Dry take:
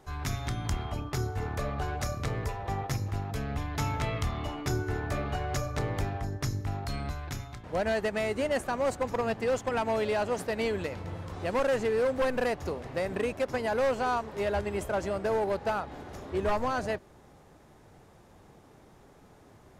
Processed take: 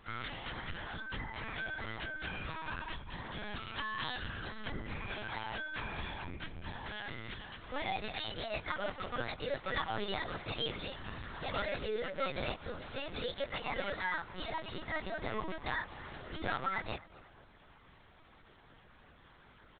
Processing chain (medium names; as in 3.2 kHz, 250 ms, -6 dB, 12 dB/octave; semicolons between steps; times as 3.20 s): tilt EQ +3 dB/octave; comb 0.8 ms, depth 33%; in parallel at +3 dB: compression 8:1, threshold -39 dBFS, peak gain reduction 14 dB; on the sum: short-mantissa float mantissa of 2-bit; wide varispeed 1.5×; one-sided clip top -17.5 dBFS, bottom -13 dBFS; plain phase-vocoder stretch 1.5×; frequency shift -230 Hz; tape echo 250 ms, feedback 62%, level -17 dB, low-pass 1.4 kHz; LPC vocoder at 8 kHz pitch kept; trim -5.5 dB